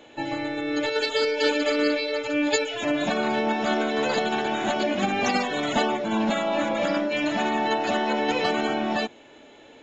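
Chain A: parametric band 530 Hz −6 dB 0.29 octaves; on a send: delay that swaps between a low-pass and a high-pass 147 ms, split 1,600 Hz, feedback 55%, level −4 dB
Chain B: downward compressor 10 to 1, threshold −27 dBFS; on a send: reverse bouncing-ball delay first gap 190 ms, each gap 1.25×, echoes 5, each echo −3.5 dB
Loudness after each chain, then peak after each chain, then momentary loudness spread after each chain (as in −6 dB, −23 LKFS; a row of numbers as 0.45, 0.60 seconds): −24.5, −28.5 LKFS; −8.0, −15.5 dBFS; 5, 2 LU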